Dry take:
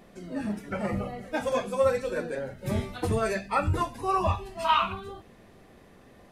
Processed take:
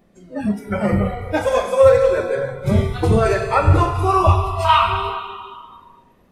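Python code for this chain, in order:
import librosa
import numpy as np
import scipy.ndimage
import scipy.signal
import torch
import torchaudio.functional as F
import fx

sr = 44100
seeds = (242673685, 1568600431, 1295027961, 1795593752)

y = fx.low_shelf(x, sr, hz=460.0, db=6.0)
y = fx.rev_schroeder(y, sr, rt60_s=2.4, comb_ms=33, drr_db=4.0)
y = fx.noise_reduce_blind(y, sr, reduce_db=15)
y = fx.high_shelf(y, sr, hz=10000.0, db=-11.0, at=(1.89, 3.99))
y = F.gain(torch.from_numpy(y), 7.5).numpy()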